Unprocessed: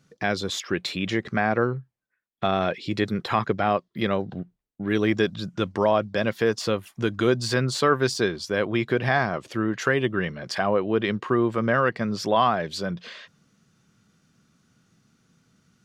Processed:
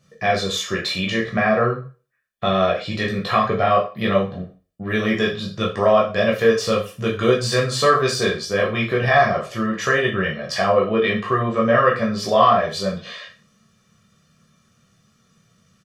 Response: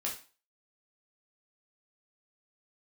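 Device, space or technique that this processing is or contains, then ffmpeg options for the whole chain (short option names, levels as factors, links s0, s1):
microphone above a desk: -filter_complex "[0:a]asettb=1/sr,asplit=3[s0][s1][s2];[s0]atrim=end=11.434[s3];[s1]atrim=start=11.43:end=11.89,asetpts=PTS-STARTPTS,afade=t=in:d=0.004:c=qsin,afade=t=out:st=0.456:d=0.004:c=qsin,lowpass=f=7400:w=0.5412,lowpass=f=7400:w=1.3066[s4];[s2]atrim=start=11.886[s5];[s3][s4]acrossfade=d=0.004:c1=hsin:c2=qsin[s6];[s6][s5]acrossfade=d=0.004:c1=qsin:c2=hsin,aecho=1:1:1.7:0.6[s7];[1:a]atrim=start_sample=2205[s8];[s7][s8]afir=irnorm=-1:irlink=0,volume=1.26"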